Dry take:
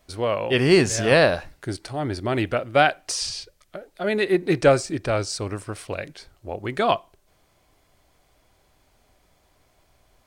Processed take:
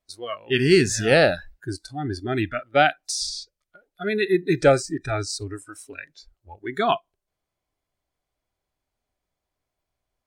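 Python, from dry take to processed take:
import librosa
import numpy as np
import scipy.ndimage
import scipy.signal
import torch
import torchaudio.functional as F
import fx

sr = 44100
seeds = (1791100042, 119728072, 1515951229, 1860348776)

y = fx.noise_reduce_blind(x, sr, reduce_db=21)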